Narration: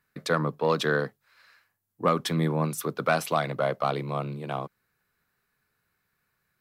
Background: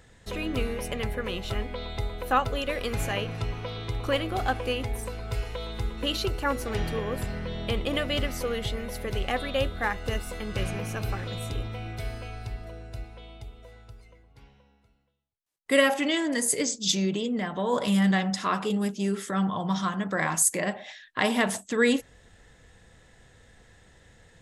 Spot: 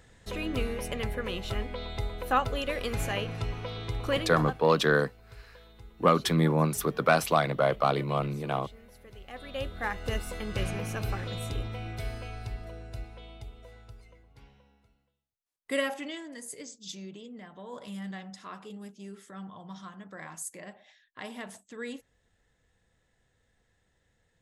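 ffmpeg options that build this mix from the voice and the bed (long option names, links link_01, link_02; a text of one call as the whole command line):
ffmpeg -i stem1.wav -i stem2.wav -filter_complex "[0:a]adelay=4000,volume=1.5dB[link_01];[1:a]volume=15.5dB,afade=type=out:start_time=4.13:duration=0.51:silence=0.141254,afade=type=in:start_time=9.26:duration=0.9:silence=0.133352,afade=type=out:start_time=14.8:duration=1.49:silence=0.177828[link_02];[link_01][link_02]amix=inputs=2:normalize=0" out.wav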